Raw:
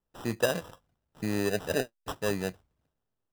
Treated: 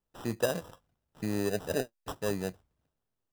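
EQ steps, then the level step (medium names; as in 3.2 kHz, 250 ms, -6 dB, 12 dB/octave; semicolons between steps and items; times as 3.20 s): dynamic bell 2.3 kHz, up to -5 dB, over -45 dBFS, Q 0.75; -1.5 dB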